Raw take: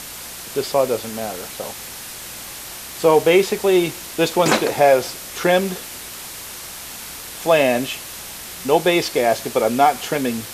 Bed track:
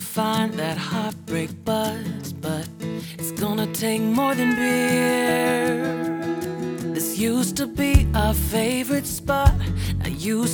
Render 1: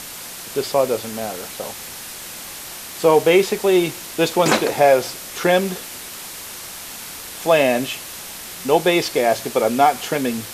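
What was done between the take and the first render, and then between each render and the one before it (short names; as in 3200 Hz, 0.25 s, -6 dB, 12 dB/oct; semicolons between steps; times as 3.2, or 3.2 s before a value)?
de-hum 60 Hz, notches 2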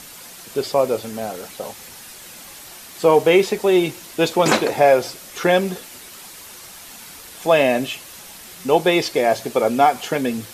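denoiser 7 dB, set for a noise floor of -34 dBFS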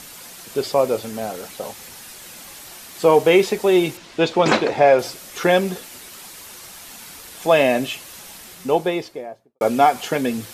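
3.97–4.99 LPF 4800 Hz; 8.34–9.61 studio fade out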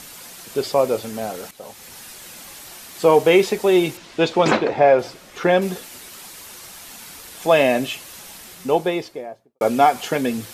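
1.51–1.98 fade in linear, from -13 dB; 4.51–5.62 LPF 2500 Hz 6 dB/oct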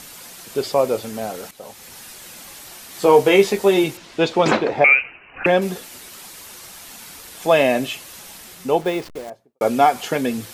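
2.89–3.84 doubler 15 ms -4 dB; 4.84–5.46 inverted band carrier 2900 Hz; 8.81–9.3 level-crossing sampler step -34 dBFS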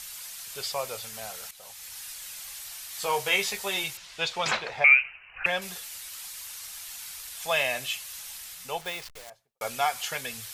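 passive tone stack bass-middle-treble 10-0-10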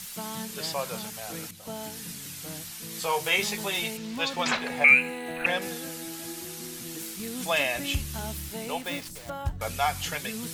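add bed track -15.5 dB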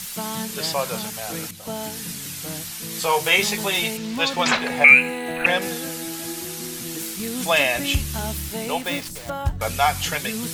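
gain +7 dB; limiter -2 dBFS, peak gain reduction 1 dB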